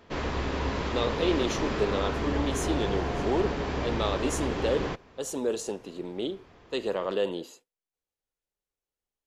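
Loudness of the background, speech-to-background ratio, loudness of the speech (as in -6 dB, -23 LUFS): -31.0 LUFS, -0.5 dB, -31.5 LUFS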